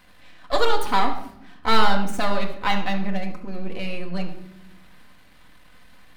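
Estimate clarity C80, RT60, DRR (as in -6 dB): 12.0 dB, no single decay rate, 1.5 dB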